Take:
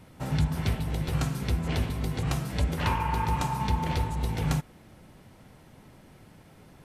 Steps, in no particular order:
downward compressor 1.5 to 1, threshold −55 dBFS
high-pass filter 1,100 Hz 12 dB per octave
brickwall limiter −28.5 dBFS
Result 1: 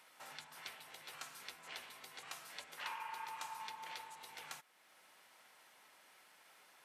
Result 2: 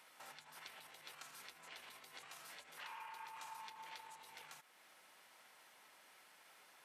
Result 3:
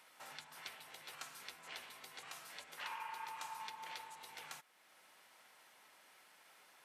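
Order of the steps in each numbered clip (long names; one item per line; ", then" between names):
downward compressor, then high-pass filter, then brickwall limiter
brickwall limiter, then downward compressor, then high-pass filter
downward compressor, then brickwall limiter, then high-pass filter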